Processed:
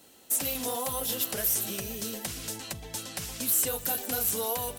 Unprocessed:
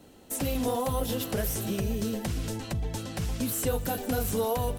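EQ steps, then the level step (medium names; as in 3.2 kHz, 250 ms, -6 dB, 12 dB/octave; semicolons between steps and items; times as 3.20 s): tilt EQ +3 dB/octave; -2.5 dB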